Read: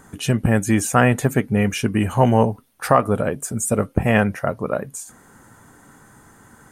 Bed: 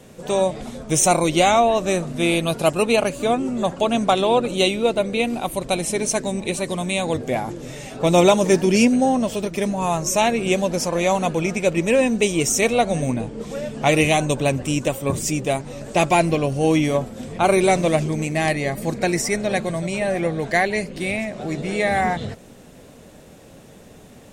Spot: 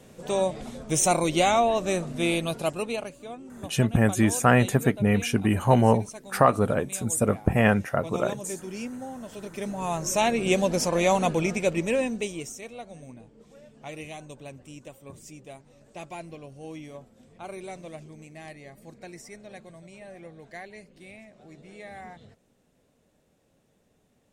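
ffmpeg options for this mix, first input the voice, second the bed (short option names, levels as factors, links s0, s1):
-filter_complex "[0:a]adelay=3500,volume=0.668[s0];[1:a]volume=3.98,afade=t=out:st=2.28:d=0.92:silence=0.188365,afade=t=in:st=9.2:d=1.42:silence=0.133352,afade=t=out:st=11.29:d=1.29:silence=0.1[s1];[s0][s1]amix=inputs=2:normalize=0"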